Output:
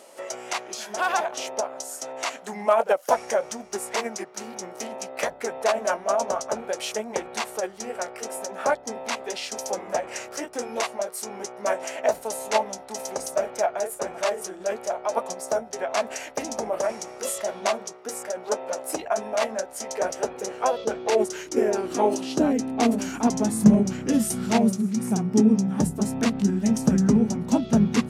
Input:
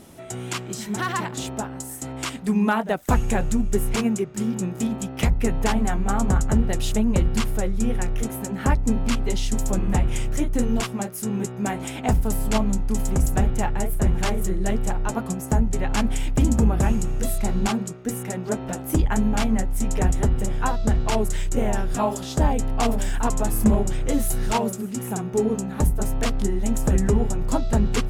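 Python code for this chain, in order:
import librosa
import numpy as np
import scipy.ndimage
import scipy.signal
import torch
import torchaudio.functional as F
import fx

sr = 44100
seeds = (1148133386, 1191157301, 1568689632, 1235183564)

y = fx.filter_sweep_highpass(x, sr, from_hz=700.0, to_hz=210.0, start_s=19.93, end_s=23.68, q=2.3)
y = fx.formant_shift(y, sr, semitones=-3)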